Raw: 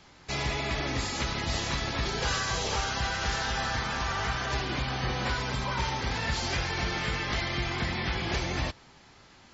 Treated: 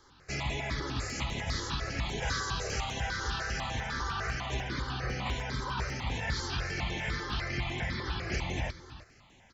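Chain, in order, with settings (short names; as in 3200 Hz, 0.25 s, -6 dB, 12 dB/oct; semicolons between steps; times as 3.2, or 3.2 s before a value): on a send: echo 0.326 s -14.5 dB; on the sum: step phaser 10 Hz 680–4800 Hz; gain -1.5 dB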